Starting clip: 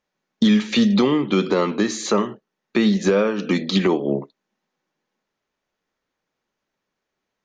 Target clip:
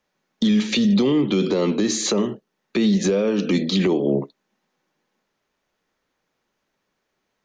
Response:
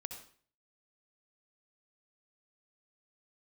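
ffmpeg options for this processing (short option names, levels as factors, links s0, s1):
-filter_complex "[0:a]acrossover=split=270|740|2300[s0][s1][s2][s3];[s2]acompressor=threshold=0.00631:ratio=6[s4];[s0][s1][s4][s3]amix=inputs=4:normalize=0,alimiter=limit=0.15:level=0:latency=1:release=40,volume=1.78"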